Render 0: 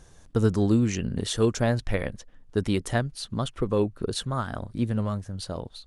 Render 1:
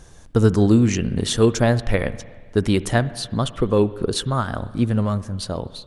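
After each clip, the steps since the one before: reverb RT60 1.7 s, pre-delay 53 ms, DRR 16 dB; gain +6.5 dB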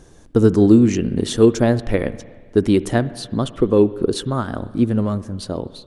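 bell 320 Hz +9.5 dB 1.4 oct; gain -3 dB

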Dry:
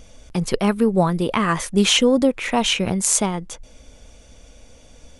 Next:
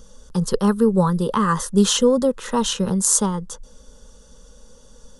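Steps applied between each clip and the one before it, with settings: fixed phaser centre 460 Hz, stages 8; gain +2 dB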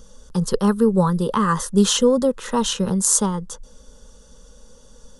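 nothing audible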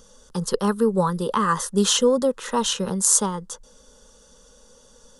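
low shelf 200 Hz -11 dB

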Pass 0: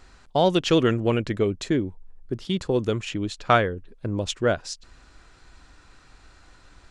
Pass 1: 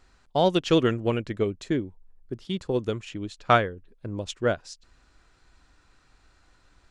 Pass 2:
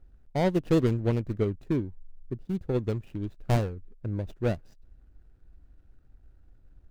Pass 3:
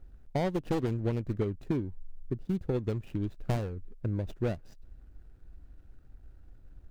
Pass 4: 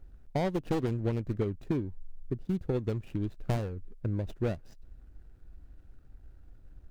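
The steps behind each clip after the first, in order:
upward expander 1.5:1, over -31 dBFS
median filter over 41 samples; low shelf 150 Hz +11.5 dB; gain -3.5 dB
one-sided fold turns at -21 dBFS; compressor 4:1, threshold -31 dBFS, peak gain reduction 11 dB; gain +3.5 dB
wow and flutter 27 cents

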